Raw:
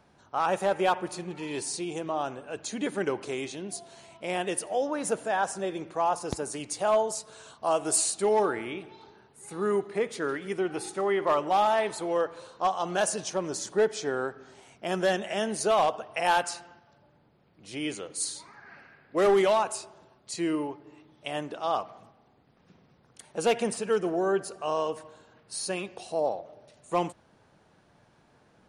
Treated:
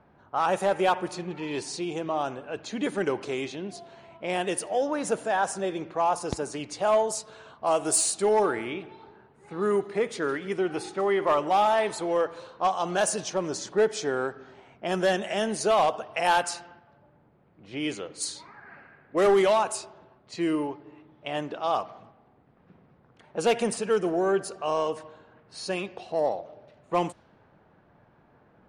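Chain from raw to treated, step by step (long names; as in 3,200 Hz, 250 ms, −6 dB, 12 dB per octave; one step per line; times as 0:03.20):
low-pass that shuts in the quiet parts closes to 1,800 Hz, open at −24.5 dBFS
in parallel at −9 dB: soft clipping −24.5 dBFS, distortion −11 dB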